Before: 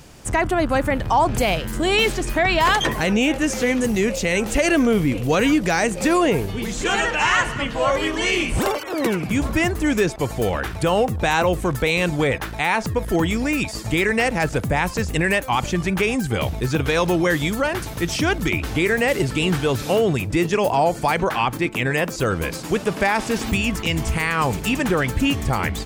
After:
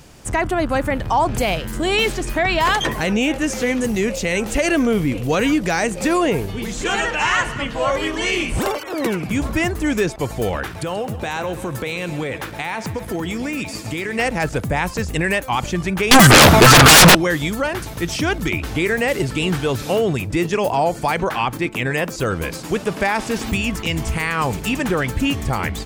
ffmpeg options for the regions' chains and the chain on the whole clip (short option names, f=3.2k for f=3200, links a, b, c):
-filter_complex "[0:a]asettb=1/sr,asplit=3[a][b][c];[a]atrim=end=10.644[d];[b]atrim=start=10.64:end=14.19,asetpts=PTS-STARTPTS,afade=t=in:d=0.004:c=qsin,afade=t=out:st=3.546:d=0.004:c=qsin,highpass=90,acompressor=threshold=-21dB:ratio=4:attack=3.2:release=140:knee=1:detection=peak,aecho=1:1:133|266|399|532|665|798:0.211|0.12|0.0687|0.0391|0.0223|0.0127,atrim=end_sample=156555[e];[c]atrim=start=14.186[f];[d][e]acrossfade=d=0.004:c1=hsin:c2=qsin[g];[g][f]acrossfade=d=0.004:c1=qsin:c2=hsin,asettb=1/sr,asplit=3[h][i][j];[h]atrim=end=16.114[k];[i]atrim=start=16.11:end=17.15,asetpts=PTS-STARTPTS,afade=t=in:d=0.004:c=qsin,afade=t=out:st=1.036:d=0.004:c=qsin,highpass=150,equalizer=f=1.3k:w=1.8:g=11,aeval=exprs='0.631*sin(PI/2*10*val(0)/0.631)':c=same[l];[j]atrim=start=17.146[m];[k][l]acrossfade=d=0.004:c1=hsin:c2=qsin[n];[n][m]acrossfade=d=0.004:c1=qsin:c2=hsin"